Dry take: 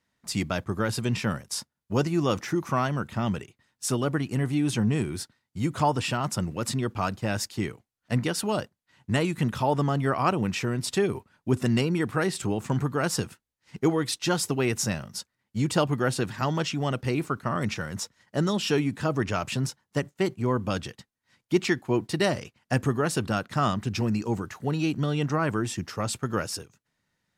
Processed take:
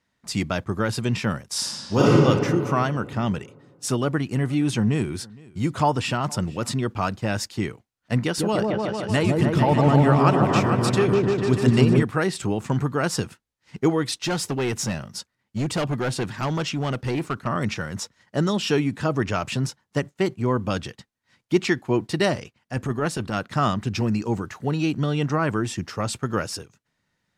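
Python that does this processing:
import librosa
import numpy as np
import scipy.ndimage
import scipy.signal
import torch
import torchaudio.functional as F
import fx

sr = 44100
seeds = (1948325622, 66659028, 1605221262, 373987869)

y = fx.reverb_throw(x, sr, start_s=1.5, length_s=0.59, rt60_s=2.5, drr_db=-8.0)
y = fx.echo_single(y, sr, ms=464, db=-23.5, at=(4.03, 6.74))
y = fx.echo_opening(y, sr, ms=149, hz=750, octaves=1, feedback_pct=70, wet_db=0, at=(8.23, 12.03))
y = fx.clip_hard(y, sr, threshold_db=-23.5, at=(14.15, 17.47))
y = fx.transient(y, sr, attack_db=-10, sustain_db=-3, at=(22.35, 23.4))
y = fx.high_shelf(y, sr, hz=12000.0, db=-11.0)
y = y * librosa.db_to_amplitude(3.0)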